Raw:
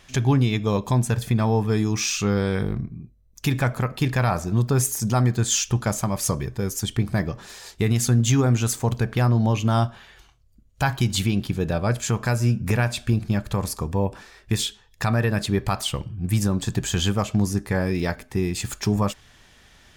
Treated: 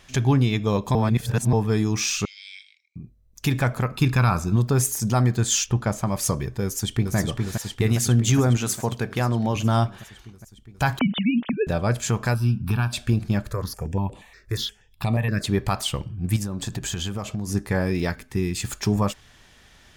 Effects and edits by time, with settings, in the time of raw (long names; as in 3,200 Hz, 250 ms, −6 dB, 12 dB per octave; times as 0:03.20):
0:00.95–0:01.53: reverse
0:02.25–0:02.96: Chebyshev band-pass filter 2,200–8,000 Hz, order 5
0:03.92–0:04.56: comb filter 0.8 ms, depth 49%
0:05.66–0:06.07: high-shelf EQ 3,800 Hz −9.5 dB
0:06.64–0:07.16: delay throw 410 ms, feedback 75%, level −4 dB
0:08.57–0:09.56: high-pass filter 180 Hz 6 dB per octave
0:10.99–0:11.67: three sine waves on the formant tracks
0:12.34–0:12.93: phaser with its sweep stopped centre 2,000 Hz, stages 6
0:13.50–0:15.44: step-sequenced phaser 8.4 Hz 820–5,400 Hz
0:16.36–0:17.49: downward compressor, threshold −24 dBFS
0:18.09–0:18.64: parametric band 660 Hz −9 dB 0.85 octaves